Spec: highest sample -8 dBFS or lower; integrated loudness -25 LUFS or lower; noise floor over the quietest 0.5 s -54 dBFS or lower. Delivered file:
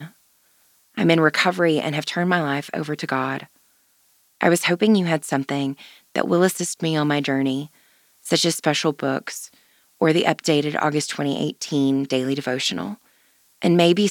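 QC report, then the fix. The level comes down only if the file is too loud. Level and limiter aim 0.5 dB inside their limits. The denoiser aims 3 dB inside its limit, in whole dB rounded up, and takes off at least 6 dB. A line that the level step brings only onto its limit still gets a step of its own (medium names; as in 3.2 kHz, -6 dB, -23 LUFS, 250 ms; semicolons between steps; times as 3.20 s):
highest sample -1.5 dBFS: fail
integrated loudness -21.0 LUFS: fail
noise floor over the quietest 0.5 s -61 dBFS: pass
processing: trim -4.5 dB; peak limiter -8.5 dBFS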